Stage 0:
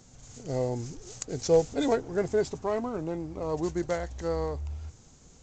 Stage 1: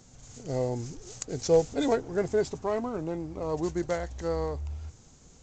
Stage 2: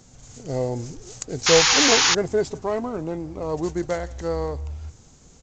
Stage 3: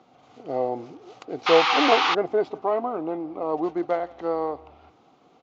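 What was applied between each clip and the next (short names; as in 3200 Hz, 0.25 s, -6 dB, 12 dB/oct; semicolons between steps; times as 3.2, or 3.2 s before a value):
nothing audible
outdoor echo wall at 29 m, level -23 dB; painted sound noise, 1.46–2.15, 750–7100 Hz -22 dBFS; gain +4 dB
speaker cabinet 300–3400 Hz, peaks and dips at 310 Hz +6 dB, 740 Hz +10 dB, 1200 Hz +7 dB, 1700 Hz -7 dB; gain -1.5 dB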